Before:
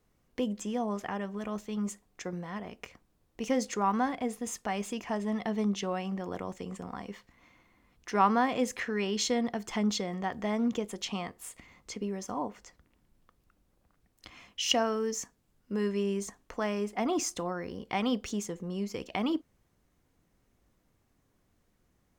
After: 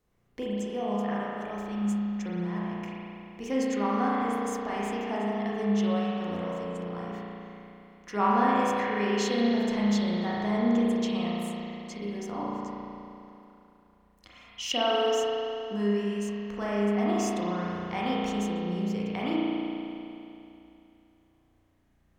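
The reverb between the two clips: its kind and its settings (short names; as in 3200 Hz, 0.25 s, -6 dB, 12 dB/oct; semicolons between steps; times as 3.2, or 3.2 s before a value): spring tank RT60 2.9 s, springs 34 ms, chirp 30 ms, DRR -6.5 dB; gain -4.5 dB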